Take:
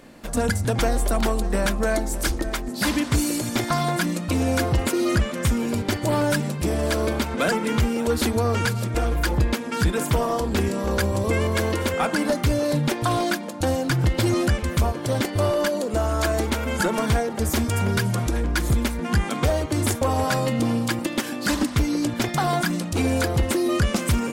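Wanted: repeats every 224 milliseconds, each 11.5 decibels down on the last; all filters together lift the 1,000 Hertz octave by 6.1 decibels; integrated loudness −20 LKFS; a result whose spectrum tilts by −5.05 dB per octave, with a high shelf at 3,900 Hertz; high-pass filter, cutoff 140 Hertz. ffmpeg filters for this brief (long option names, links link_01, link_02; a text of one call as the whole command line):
ffmpeg -i in.wav -af "highpass=140,equalizer=frequency=1000:width_type=o:gain=8.5,highshelf=frequency=3900:gain=-4.5,aecho=1:1:224|448|672:0.266|0.0718|0.0194,volume=2.5dB" out.wav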